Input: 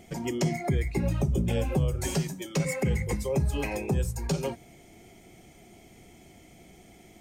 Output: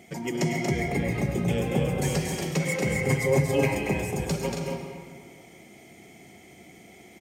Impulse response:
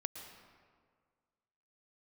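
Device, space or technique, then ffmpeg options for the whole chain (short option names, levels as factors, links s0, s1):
stadium PA: -filter_complex "[0:a]highpass=120,equalizer=f=2100:t=o:w=0.31:g=6,aecho=1:1:233.2|274.1:0.562|0.398[s0];[1:a]atrim=start_sample=2205[s1];[s0][s1]afir=irnorm=-1:irlink=0,asettb=1/sr,asplit=3[s2][s3][s4];[s2]atrim=end=3.064[s5];[s3]atrim=start=3.06:end=3.75,asetpts=PTS-STARTPTS,afade=t=in:d=0.004:c=qsin,afade=t=out:st=0.686:d=0.004:c=qsin,aecho=1:1:7.4:0.99,atrim=end_sample=30429[s6];[s4]atrim=start=3.746[s7];[s5][s6]acrossfade=d=0.004:c1=hsin:c2=qsin[s8];[s8][s7]acrossfade=d=0.004:c1=qsin:c2=hsin,volume=1.33"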